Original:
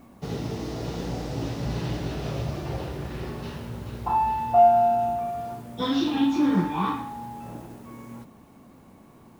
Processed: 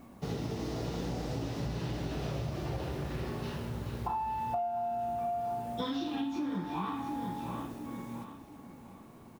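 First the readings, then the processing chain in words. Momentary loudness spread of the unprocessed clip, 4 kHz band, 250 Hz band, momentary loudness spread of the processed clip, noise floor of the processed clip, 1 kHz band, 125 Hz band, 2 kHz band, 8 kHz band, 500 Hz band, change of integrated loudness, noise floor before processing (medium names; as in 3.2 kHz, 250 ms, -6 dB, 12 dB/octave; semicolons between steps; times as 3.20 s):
18 LU, -7.5 dB, -9.0 dB, 10 LU, -53 dBFS, -11.0 dB, -5.5 dB, -7.0 dB, no reading, -11.0 dB, -10.0 dB, -52 dBFS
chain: on a send: feedback delay 703 ms, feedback 36%, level -14.5 dB; on the sum: compression 16:1, threshold -29 dBFS, peak gain reduction 17 dB; trim -2 dB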